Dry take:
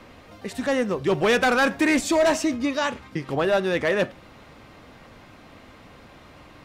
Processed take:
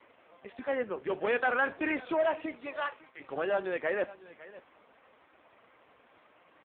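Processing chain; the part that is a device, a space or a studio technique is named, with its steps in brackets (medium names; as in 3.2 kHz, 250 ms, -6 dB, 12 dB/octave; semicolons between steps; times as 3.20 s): 2.23–3.19 s: high-pass 290 Hz -> 680 Hz 12 dB/octave; satellite phone (band-pass 390–3400 Hz; delay 555 ms -18 dB; trim -6.5 dB; AMR-NB 4.75 kbps 8 kHz)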